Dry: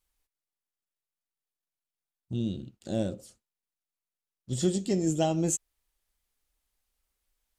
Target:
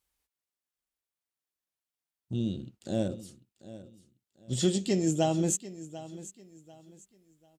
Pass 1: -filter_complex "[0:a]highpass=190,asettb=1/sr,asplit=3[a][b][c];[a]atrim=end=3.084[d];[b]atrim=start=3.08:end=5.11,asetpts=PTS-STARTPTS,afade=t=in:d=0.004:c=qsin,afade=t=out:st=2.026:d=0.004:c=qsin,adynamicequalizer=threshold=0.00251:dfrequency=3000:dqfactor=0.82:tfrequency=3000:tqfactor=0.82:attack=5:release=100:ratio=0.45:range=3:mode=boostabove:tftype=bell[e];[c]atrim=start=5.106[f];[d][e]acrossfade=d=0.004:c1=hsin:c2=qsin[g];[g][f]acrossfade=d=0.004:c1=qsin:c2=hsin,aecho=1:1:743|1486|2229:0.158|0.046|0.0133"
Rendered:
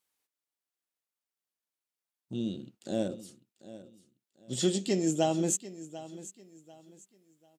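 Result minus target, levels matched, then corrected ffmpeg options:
125 Hz band -4.0 dB
-filter_complex "[0:a]highpass=52,asettb=1/sr,asplit=3[a][b][c];[a]atrim=end=3.084[d];[b]atrim=start=3.08:end=5.11,asetpts=PTS-STARTPTS,afade=t=in:d=0.004:c=qsin,afade=t=out:st=2.026:d=0.004:c=qsin,adynamicequalizer=threshold=0.00251:dfrequency=3000:dqfactor=0.82:tfrequency=3000:tqfactor=0.82:attack=5:release=100:ratio=0.45:range=3:mode=boostabove:tftype=bell[e];[c]atrim=start=5.106[f];[d][e]acrossfade=d=0.004:c1=hsin:c2=qsin[g];[g][f]acrossfade=d=0.004:c1=qsin:c2=hsin,aecho=1:1:743|1486|2229:0.158|0.046|0.0133"

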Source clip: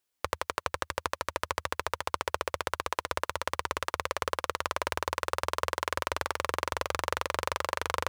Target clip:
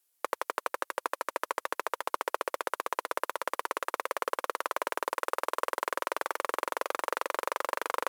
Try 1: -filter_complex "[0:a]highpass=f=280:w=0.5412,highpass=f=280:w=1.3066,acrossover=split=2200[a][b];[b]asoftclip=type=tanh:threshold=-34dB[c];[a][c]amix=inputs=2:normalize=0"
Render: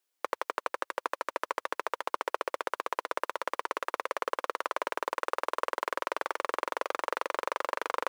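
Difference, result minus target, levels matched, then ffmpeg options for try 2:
8000 Hz band -5.0 dB
-filter_complex "[0:a]highpass=f=280:w=0.5412,highpass=f=280:w=1.3066,equalizer=f=12k:w=0.56:g=12,acrossover=split=2200[a][b];[b]asoftclip=type=tanh:threshold=-34dB[c];[a][c]amix=inputs=2:normalize=0"

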